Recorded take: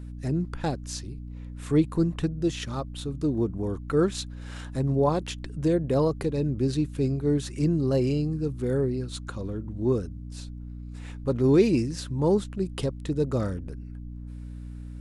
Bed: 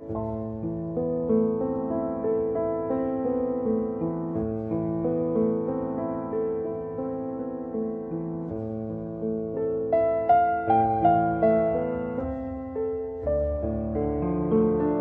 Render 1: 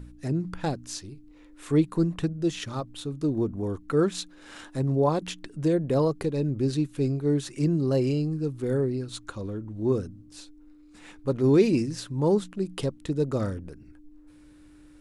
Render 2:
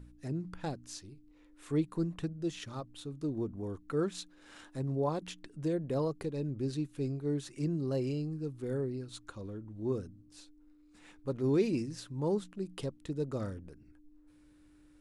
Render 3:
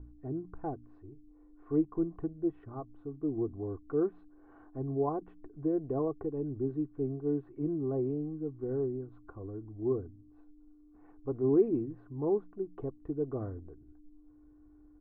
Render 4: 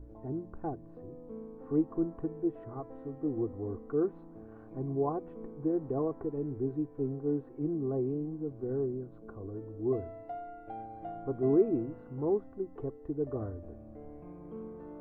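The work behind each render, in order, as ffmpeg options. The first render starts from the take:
-af "bandreject=f=60:t=h:w=4,bandreject=f=120:t=h:w=4,bandreject=f=180:t=h:w=4,bandreject=f=240:t=h:w=4"
-af "volume=0.355"
-af "lowpass=f=1100:w=0.5412,lowpass=f=1100:w=1.3066,aecho=1:1:2.7:0.65"
-filter_complex "[1:a]volume=0.0794[s0];[0:a][s0]amix=inputs=2:normalize=0"

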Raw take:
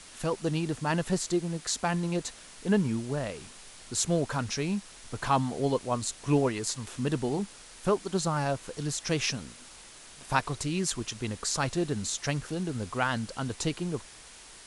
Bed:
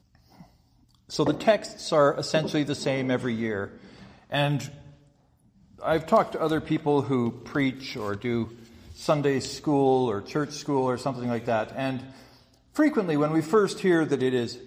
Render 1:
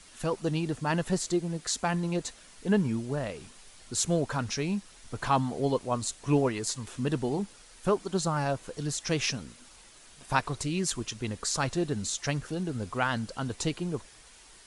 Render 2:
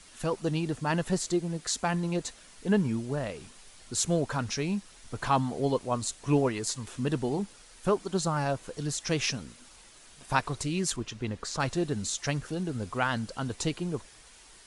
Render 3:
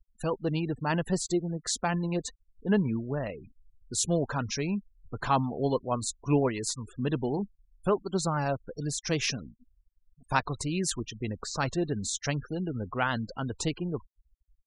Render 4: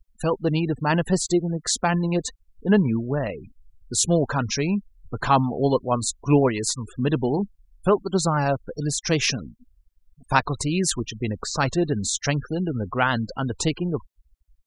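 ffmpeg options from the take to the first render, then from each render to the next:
-af "afftdn=nr=6:nf=-50"
-filter_complex "[0:a]asettb=1/sr,asplit=3[s0][s1][s2];[s0]atrim=end=10.964[s3];[s1]atrim=start=10.96:end=11.6,asetpts=PTS-STARTPTS,afade=t=in:d=0.004:c=qsin,afade=t=out:st=0.636:d=0.004:c=qsin,aemphasis=mode=reproduction:type=50fm[s4];[s2]atrim=start=11.596[s5];[s3][s4]acrossfade=d=0.004:c1=hsin:c2=qsin[s6];[s6][s5]acrossfade=d=0.004:c1=qsin:c2=hsin"
-af "afftfilt=real='re*gte(hypot(re,im),0.0112)':imag='im*gte(hypot(re,im),0.0112)':win_size=1024:overlap=0.75"
-af "volume=2.24"

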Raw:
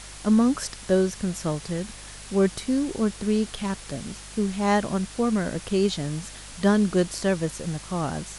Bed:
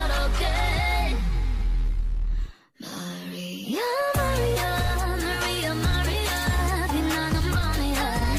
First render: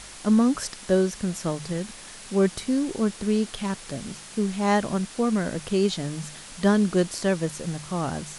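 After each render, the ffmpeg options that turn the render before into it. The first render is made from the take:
-af "bandreject=f=50:t=h:w=4,bandreject=f=100:t=h:w=4,bandreject=f=150:t=h:w=4"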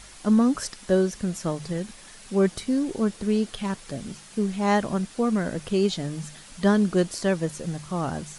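-af "afftdn=nr=6:nf=-43"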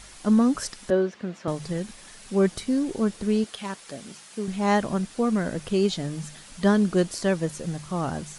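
-filter_complex "[0:a]asettb=1/sr,asplit=3[s0][s1][s2];[s0]atrim=end=0.904[s3];[s1]atrim=start=0.9:end=1.48,asetpts=PTS-STARTPTS,afade=t=in:d=0.004:c=qsin,afade=t=out:st=0.576:d=0.004:c=qsin,highpass=240,lowpass=2900[s4];[s2]atrim=start=1.476[s5];[s3][s4]acrossfade=d=0.004:c1=hsin:c2=qsin[s6];[s6][s5]acrossfade=d=0.004:c1=qsin:c2=hsin,asettb=1/sr,asplit=3[s7][s8][s9];[s7]atrim=end=3.444[s10];[s8]atrim=start=3.44:end=4.48,asetpts=PTS-STARTPTS,afade=t=in:d=0.004:c=qsin,afade=t=out:st=1.036:d=0.004:c=qsin,highpass=f=430:p=1[s11];[s9]atrim=start=4.476[s12];[s10][s11]acrossfade=d=0.004:c1=hsin:c2=qsin[s13];[s13][s12]acrossfade=d=0.004:c1=qsin:c2=hsin"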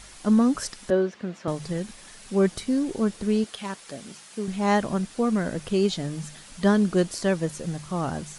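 -af anull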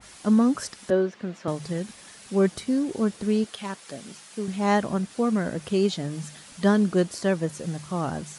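-af "highpass=78,adynamicequalizer=threshold=0.0112:dfrequency=2300:dqfactor=0.7:tfrequency=2300:tqfactor=0.7:attack=5:release=100:ratio=0.375:range=2:mode=cutabove:tftype=highshelf"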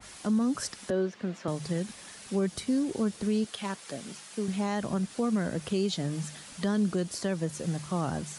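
-filter_complex "[0:a]acrossover=split=180|3000[s0][s1][s2];[s1]acompressor=threshold=0.0224:ratio=1.5[s3];[s0][s3][s2]amix=inputs=3:normalize=0,alimiter=limit=0.1:level=0:latency=1:release=72"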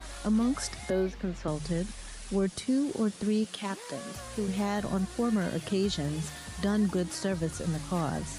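-filter_complex "[1:a]volume=0.1[s0];[0:a][s0]amix=inputs=2:normalize=0"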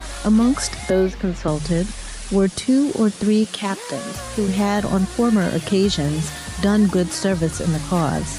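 -af "volume=3.55"

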